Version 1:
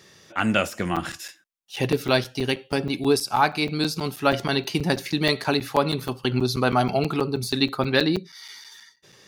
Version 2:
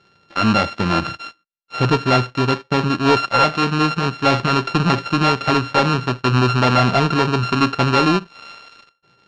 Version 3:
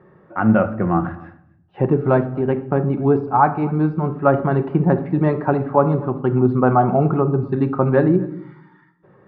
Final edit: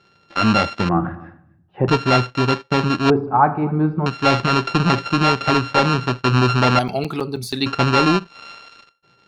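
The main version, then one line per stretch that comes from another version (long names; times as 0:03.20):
2
0:00.89–0:01.88: punch in from 3
0:03.10–0:04.06: punch in from 3
0:06.79–0:07.66: punch in from 1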